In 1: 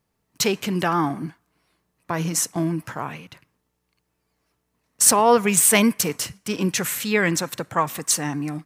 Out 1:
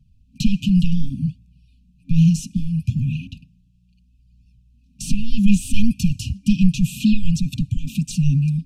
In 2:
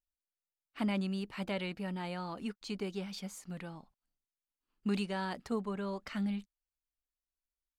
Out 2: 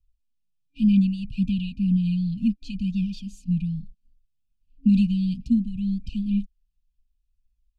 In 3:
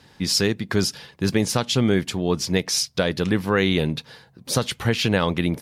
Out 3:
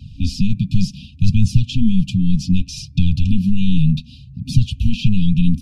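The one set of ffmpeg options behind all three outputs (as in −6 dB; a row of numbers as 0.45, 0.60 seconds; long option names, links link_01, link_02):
-filter_complex "[0:a]apsyclip=17.5dB,aemphasis=mode=reproduction:type=riaa,acrossover=split=95|2600[link_01][link_02][link_03];[link_01]acompressor=threshold=-2dB:ratio=4[link_04];[link_02]acompressor=threshold=-7dB:ratio=4[link_05];[link_03]acompressor=threshold=-23dB:ratio=4[link_06];[link_04][link_05][link_06]amix=inputs=3:normalize=0,afftfilt=real='re*(1-between(b*sr/4096,270,2400))':imag='im*(1-between(b*sr/4096,270,2400))':win_size=4096:overlap=0.75,flanger=delay=1.1:depth=5.3:regen=1:speed=0.66:shape=sinusoidal,volume=-6.5dB"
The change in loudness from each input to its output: −0.5, +13.5, +3.0 LU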